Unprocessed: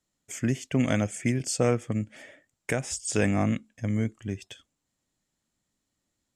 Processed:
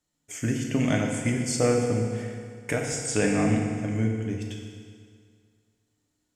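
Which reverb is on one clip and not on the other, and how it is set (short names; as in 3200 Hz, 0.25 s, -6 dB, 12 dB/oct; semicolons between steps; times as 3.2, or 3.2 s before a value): FDN reverb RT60 2.1 s, low-frequency decay 0.95×, high-frequency decay 0.85×, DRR 0 dB; gain -1 dB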